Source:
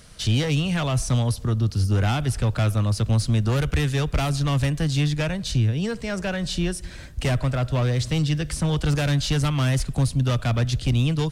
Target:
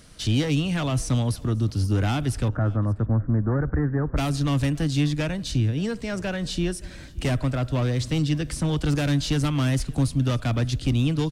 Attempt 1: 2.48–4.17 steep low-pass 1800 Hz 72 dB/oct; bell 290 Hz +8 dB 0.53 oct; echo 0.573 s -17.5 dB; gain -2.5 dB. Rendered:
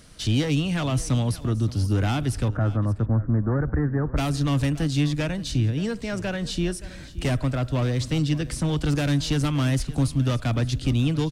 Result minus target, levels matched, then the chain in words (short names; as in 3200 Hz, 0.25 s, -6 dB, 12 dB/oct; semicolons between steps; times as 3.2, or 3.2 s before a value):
echo-to-direct +6.5 dB
2.48–4.17 steep low-pass 1800 Hz 72 dB/oct; bell 290 Hz +8 dB 0.53 oct; echo 0.573 s -24 dB; gain -2.5 dB